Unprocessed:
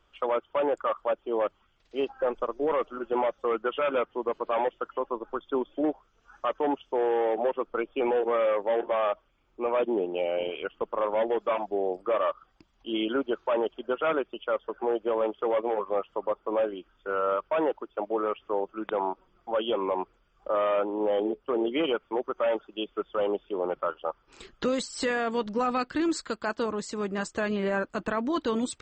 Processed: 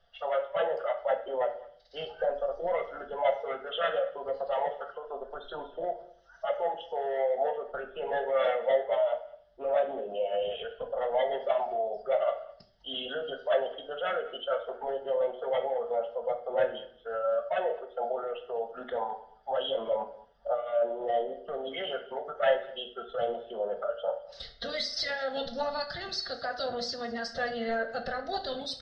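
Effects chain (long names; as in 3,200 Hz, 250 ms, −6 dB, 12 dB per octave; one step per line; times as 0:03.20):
noise reduction from a noise print of the clip's start 6 dB
harmonic and percussive parts rebalanced percussive +5 dB
brickwall limiter −25.5 dBFS, peak gain reduction 12 dB
low-pass with resonance 5,200 Hz, resonance Q 2.8
hollow resonant body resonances 600/990/2,100 Hz, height 10 dB, ringing for 25 ms
phase-vocoder pitch shift with formants kept +2.5 semitones
phaser with its sweep stopped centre 1,600 Hz, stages 8
slap from a distant wall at 36 metres, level −21 dB
convolution reverb RT60 0.50 s, pre-delay 6 ms, DRR 4.5 dB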